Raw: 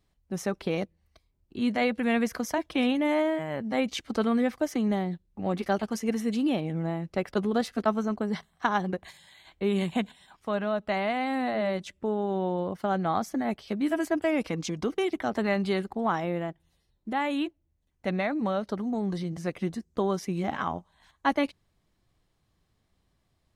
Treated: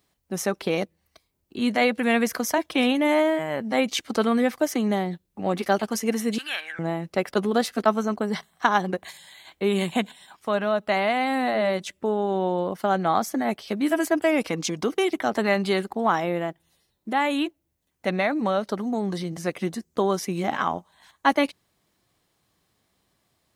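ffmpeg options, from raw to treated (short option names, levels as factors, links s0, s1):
-filter_complex "[0:a]asettb=1/sr,asplit=3[s0][s1][s2];[s0]atrim=end=6.384[s3];[s1]atrim=start=6.38:end=6.79,asetpts=PTS-STARTPTS,afade=t=in:d=0.004:c=qsin,afade=t=out:st=0.406:d=0.004:c=qsin,highpass=f=1600:t=q:w=11[s4];[s2]atrim=start=6.786[s5];[s3][s4]acrossfade=d=0.004:c1=hsin:c2=qsin[s6];[s6][s5]acrossfade=d=0.004:c1=qsin:c2=hsin,highpass=f=260:p=1,highshelf=f=8600:g=8.5,volume=2"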